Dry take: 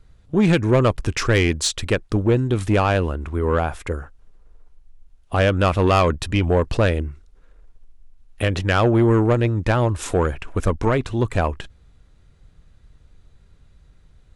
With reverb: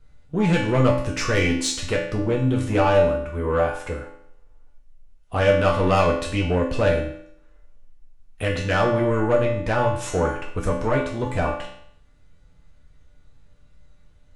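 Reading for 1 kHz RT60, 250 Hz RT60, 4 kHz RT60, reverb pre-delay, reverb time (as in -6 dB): 0.65 s, 0.65 s, 0.60 s, 3 ms, 0.65 s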